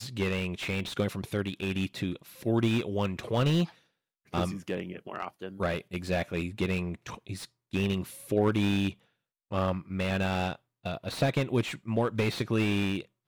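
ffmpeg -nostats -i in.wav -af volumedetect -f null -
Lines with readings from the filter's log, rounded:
mean_volume: -30.7 dB
max_volume: -13.6 dB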